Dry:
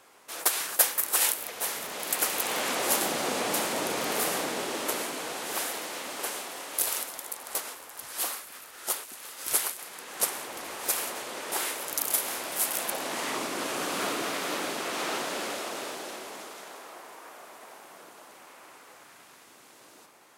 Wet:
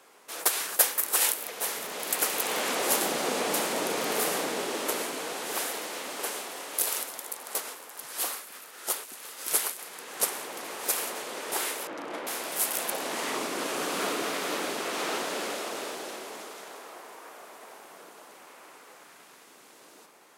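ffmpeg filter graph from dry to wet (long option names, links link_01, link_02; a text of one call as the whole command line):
ffmpeg -i in.wav -filter_complex "[0:a]asettb=1/sr,asplit=3[link_01][link_02][link_03];[link_01]atrim=end=11.874[link_04];[link_02]atrim=start=11.87:end=12.27,asetpts=PTS-STARTPTS,afade=type=in:duration=0.004:curve=qsin,afade=type=out:start_time=0.396:duration=0.004:curve=qsin,lowpass=2100,equalizer=frequency=340:width_type=o:width=0.91:gain=8,bandreject=frequency=410:width=5.3[link_05];[link_03]atrim=start=12.266[link_06];[link_04][link_05]acrossfade=duration=0.004:curve1=hsin:curve2=qsin[link_07];[link_07][link_06]acrossfade=duration=0.004:curve1=qsin:curve2=hsin,highpass=frequency=140:width=0.5412,highpass=frequency=140:width=1.3066,equalizer=frequency=440:width_type=o:width=0.35:gain=3.5" out.wav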